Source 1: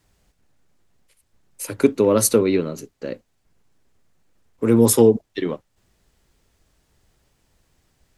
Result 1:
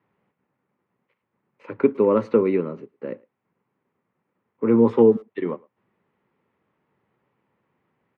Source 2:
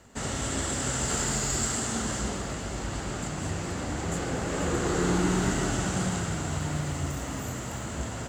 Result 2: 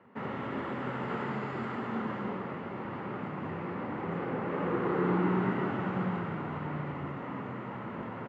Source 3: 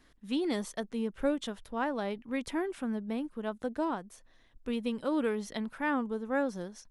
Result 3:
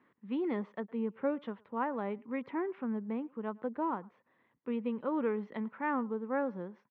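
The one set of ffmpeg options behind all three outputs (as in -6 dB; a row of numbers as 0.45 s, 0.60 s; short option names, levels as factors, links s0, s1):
-filter_complex "[0:a]highpass=f=140:w=0.5412,highpass=f=140:w=1.3066,equalizer=f=150:t=q:w=4:g=-4,equalizer=f=290:t=q:w=4:g=-4,equalizer=f=670:t=q:w=4:g=-7,equalizer=f=1000:t=q:w=4:g=3,equalizer=f=1600:t=q:w=4:g=-6,lowpass=f=2100:w=0.5412,lowpass=f=2100:w=1.3066,asplit=2[s0][s1];[s1]adelay=110,highpass=300,lowpass=3400,asoftclip=type=hard:threshold=0.211,volume=0.0562[s2];[s0][s2]amix=inputs=2:normalize=0"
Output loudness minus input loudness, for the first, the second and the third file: -2.0 LU, -5.0 LU, -2.0 LU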